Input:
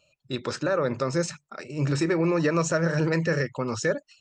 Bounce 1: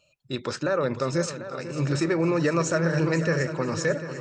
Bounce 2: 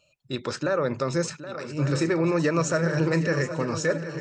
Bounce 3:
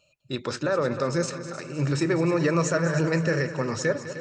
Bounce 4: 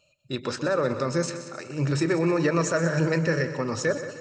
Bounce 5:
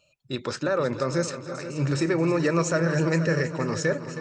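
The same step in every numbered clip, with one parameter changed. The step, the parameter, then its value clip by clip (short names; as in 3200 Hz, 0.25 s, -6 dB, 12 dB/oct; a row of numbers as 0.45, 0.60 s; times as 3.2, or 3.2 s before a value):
multi-head echo, time: 248, 386, 102, 62, 159 ms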